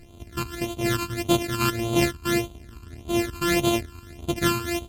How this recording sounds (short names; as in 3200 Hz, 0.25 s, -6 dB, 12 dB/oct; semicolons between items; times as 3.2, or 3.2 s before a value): a buzz of ramps at a fixed pitch in blocks of 128 samples; phasing stages 12, 1.7 Hz, lowest notch 600–1800 Hz; MP3